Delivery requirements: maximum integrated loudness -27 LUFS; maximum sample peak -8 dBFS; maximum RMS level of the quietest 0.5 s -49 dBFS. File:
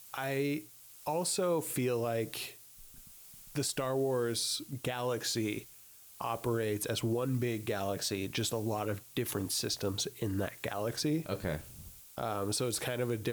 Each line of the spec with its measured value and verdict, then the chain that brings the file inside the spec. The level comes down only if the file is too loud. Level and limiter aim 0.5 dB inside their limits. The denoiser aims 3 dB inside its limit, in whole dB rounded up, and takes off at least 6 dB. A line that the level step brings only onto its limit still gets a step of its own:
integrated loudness -34.5 LUFS: OK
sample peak -22.0 dBFS: OK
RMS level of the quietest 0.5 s -55 dBFS: OK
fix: none

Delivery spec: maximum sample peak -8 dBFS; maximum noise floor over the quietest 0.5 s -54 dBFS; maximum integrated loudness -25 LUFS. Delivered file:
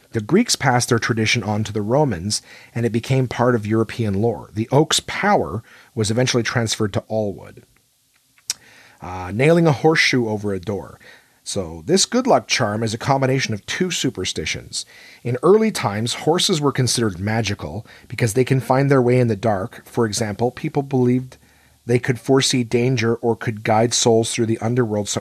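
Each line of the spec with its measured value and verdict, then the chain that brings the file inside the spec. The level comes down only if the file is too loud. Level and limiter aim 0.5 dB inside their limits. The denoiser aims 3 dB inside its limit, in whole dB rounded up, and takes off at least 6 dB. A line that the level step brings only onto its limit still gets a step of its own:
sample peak -2.0 dBFS: fail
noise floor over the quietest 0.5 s -61 dBFS: OK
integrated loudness -19.0 LUFS: fail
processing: gain -6.5 dB

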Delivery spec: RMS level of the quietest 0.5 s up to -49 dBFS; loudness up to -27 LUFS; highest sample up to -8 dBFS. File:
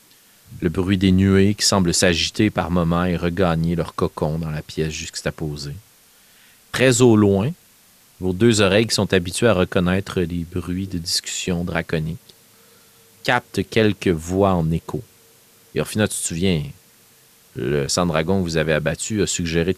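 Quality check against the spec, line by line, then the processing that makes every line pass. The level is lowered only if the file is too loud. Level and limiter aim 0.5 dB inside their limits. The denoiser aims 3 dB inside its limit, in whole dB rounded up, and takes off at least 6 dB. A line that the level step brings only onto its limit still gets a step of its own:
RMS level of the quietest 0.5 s -53 dBFS: OK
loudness -20.0 LUFS: fail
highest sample -2.0 dBFS: fail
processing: gain -7.5 dB

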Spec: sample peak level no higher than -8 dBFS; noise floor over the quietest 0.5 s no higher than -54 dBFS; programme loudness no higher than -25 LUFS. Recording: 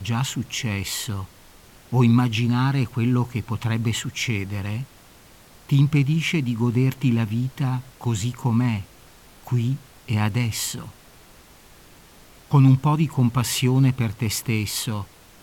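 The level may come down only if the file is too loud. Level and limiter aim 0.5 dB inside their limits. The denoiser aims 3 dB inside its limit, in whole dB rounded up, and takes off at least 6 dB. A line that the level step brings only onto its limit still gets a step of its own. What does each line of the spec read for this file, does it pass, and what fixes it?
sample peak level -7.0 dBFS: fail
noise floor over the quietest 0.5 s -49 dBFS: fail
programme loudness -22.5 LUFS: fail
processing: denoiser 6 dB, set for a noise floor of -49 dBFS; gain -3 dB

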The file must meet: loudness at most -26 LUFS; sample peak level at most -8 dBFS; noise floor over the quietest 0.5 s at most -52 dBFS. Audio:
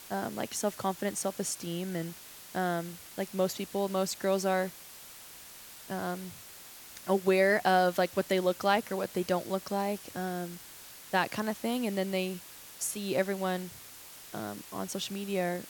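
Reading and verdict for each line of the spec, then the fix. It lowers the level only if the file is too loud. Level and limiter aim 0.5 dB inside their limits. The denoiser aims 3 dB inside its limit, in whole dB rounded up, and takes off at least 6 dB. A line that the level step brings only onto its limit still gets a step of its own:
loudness -31.5 LUFS: OK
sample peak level -11.5 dBFS: OK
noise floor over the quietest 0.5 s -49 dBFS: fail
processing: denoiser 6 dB, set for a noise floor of -49 dBFS

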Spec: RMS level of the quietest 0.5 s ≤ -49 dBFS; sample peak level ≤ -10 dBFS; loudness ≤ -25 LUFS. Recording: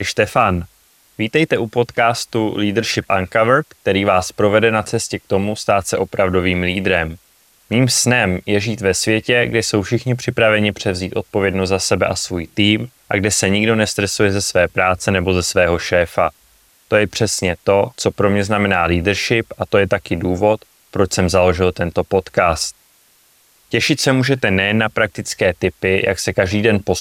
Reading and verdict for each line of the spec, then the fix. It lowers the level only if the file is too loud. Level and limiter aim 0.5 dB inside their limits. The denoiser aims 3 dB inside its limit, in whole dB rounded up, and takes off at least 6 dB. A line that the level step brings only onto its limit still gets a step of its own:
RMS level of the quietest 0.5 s -54 dBFS: OK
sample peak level -1.5 dBFS: fail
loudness -16.5 LUFS: fail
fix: gain -9 dB

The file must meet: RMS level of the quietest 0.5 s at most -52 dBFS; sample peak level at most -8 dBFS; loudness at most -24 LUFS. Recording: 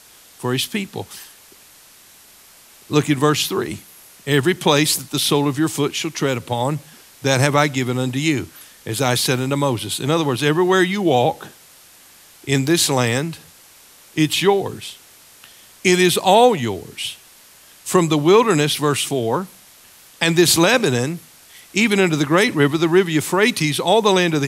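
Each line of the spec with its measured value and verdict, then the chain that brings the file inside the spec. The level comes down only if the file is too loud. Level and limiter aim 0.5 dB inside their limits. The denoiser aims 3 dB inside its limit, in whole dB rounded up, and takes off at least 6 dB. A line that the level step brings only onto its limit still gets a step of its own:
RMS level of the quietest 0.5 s -47 dBFS: fail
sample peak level -1.5 dBFS: fail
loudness -18.0 LUFS: fail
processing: gain -6.5 dB; limiter -8.5 dBFS

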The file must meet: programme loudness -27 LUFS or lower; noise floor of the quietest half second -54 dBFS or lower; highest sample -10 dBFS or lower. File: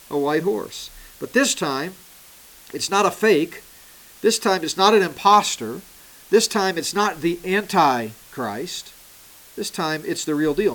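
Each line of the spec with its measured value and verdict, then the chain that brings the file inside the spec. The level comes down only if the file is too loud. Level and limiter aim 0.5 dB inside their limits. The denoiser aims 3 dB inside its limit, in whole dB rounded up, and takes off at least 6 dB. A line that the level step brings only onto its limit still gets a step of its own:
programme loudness -20.5 LUFS: fail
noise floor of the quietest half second -47 dBFS: fail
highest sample -4.0 dBFS: fail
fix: denoiser 6 dB, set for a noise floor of -47 dBFS; gain -7 dB

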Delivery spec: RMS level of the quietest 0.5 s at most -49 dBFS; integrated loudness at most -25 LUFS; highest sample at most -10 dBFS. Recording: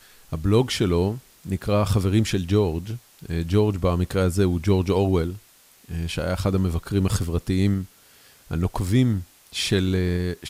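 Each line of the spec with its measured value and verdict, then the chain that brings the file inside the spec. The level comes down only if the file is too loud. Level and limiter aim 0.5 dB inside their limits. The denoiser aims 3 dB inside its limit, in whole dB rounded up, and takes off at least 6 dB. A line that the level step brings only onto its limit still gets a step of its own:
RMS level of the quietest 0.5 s -54 dBFS: OK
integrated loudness -23.5 LUFS: fail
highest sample -7.0 dBFS: fail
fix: gain -2 dB; limiter -10.5 dBFS

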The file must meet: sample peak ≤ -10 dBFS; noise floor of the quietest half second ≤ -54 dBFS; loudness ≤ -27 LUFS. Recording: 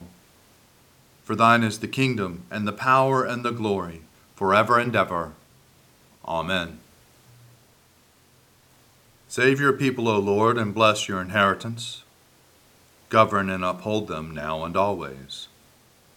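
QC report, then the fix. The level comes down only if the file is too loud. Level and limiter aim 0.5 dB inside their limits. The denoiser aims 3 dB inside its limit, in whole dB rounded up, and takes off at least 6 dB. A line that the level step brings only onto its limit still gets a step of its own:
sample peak -2.5 dBFS: fail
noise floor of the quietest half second -58 dBFS: OK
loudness -22.5 LUFS: fail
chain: gain -5 dB; limiter -10.5 dBFS

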